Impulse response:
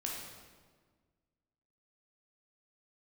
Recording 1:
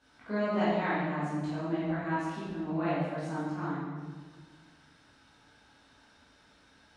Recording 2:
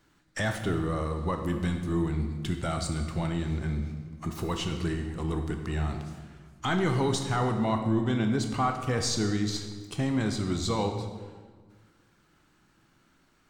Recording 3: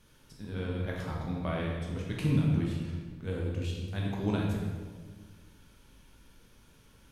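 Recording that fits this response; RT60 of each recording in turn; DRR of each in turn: 3; 1.6, 1.6, 1.6 s; -10.5, 4.5, -2.5 dB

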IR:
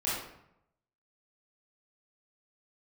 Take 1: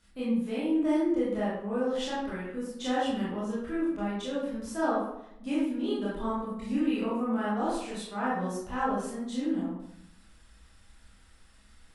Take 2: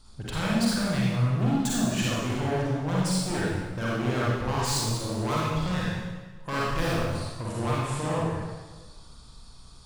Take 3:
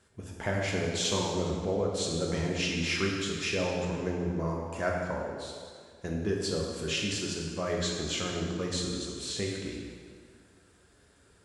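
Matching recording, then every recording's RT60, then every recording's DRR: 1; 0.80, 1.4, 1.9 s; -9.0, -7.0, -2.0 dB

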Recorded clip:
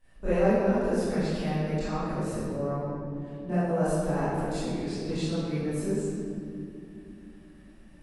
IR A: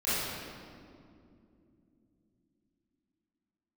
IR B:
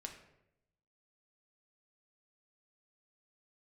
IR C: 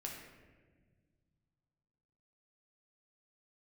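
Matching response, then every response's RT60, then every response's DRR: A; 2.6, 0.85, 1.5 s; -15.5, 2.5, -1.5 dB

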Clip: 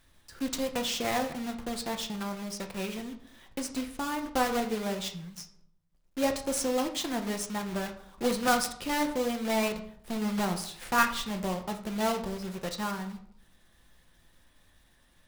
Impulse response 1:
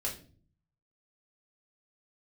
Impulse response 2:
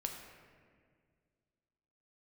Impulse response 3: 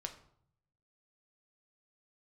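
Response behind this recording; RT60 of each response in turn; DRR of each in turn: 3; 0.45, 1.9, 0.65 s; -3.0, 2.5, 4.5 dB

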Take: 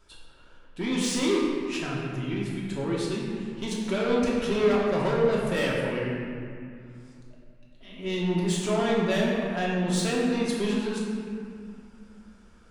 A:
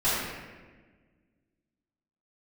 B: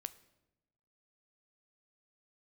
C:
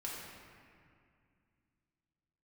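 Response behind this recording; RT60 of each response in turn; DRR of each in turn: C; 1.4, 0.95, 2.2 s; -13.0, 13.5, -5.5 dB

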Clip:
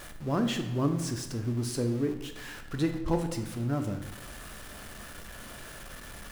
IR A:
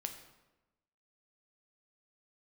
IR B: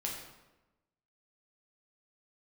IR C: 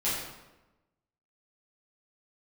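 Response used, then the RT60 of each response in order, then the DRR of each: A; 1.1, 1.1, 1.1 s; 5.0, -2.5, -10.5 dB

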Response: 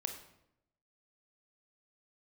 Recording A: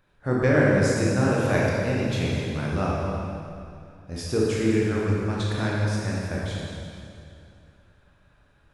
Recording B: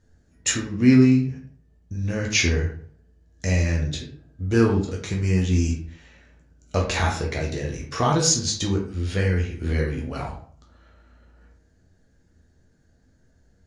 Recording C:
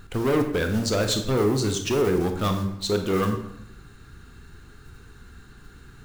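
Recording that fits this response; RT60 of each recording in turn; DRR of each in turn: C; 2.5, 0.50, 0.80 s; -5.5, -1.0, 5.0 dB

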